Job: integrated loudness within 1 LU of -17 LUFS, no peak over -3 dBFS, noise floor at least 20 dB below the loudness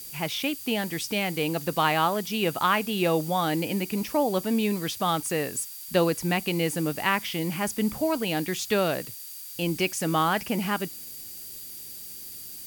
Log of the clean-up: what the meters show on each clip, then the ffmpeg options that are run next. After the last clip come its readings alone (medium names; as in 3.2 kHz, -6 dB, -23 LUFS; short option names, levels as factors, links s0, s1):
steady tone 4.7 kHz; tone level -51 dBFS; noise floor -41 dBFS; noise floor target -47 dBFS; loudness -26.5 LUFS; peak level -9.0 dBFS; loudness target -17.0 LUFS
-> -af "bandreject=f=4700:w=30"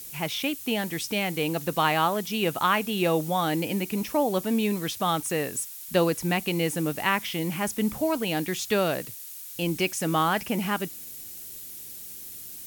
steady tone not found; noise floor -41 dBFS; noise floor target -47 dBFS
-> -af "afftdn=nr=6:nf=-41"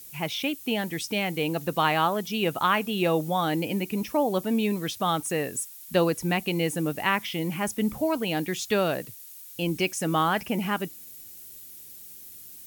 noise floor -45 dBFS; noise floor target -47 dBFS
-> -af "afftdn=nr=6:nf=-45"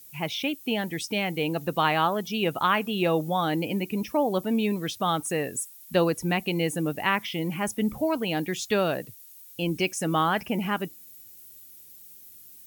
noise floor -49 dBFS; loudness -27.0 LUFS; peak level -9.5 dBFS; loudness target -17.0 LUFS
-> -af "volume=3.16,alimiter=limit=0.708:level=0:latency=1"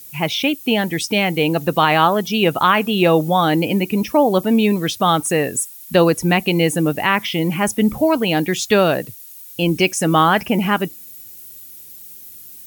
loudness -17.0 LUFS; peak level -3.0 dBFS; noise floor -39 dBFS